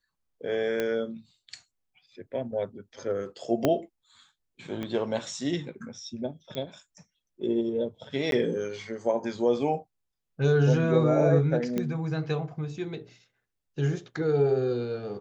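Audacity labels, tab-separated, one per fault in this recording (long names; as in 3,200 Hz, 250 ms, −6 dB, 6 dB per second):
0.800000	0.800000	click −15 dBFS
3.650000	3.650000	click −10 dBFS
4.830000	4.830000	click −21 dBFS
6.550000	6.550000	click −21 dBFS
8.310000	8.320000	drop-out 12 ms
11.780000	11.780000	click −16 dBFS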